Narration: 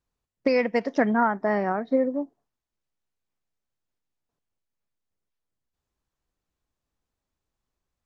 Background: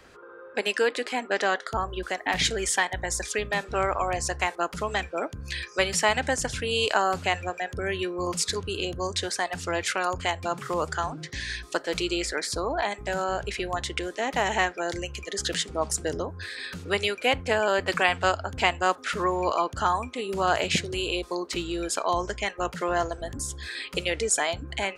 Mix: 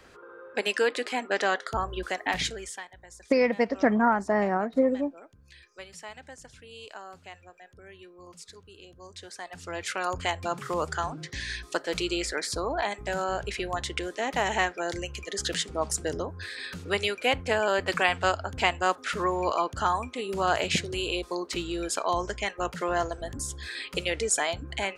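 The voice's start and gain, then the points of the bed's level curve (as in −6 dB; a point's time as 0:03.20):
2.85 s, −0.5 dB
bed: 0:02.29 −1 dB
0:02.93 −20 dB
0:08.89 −20 dB
0:10.14 −1.5 dB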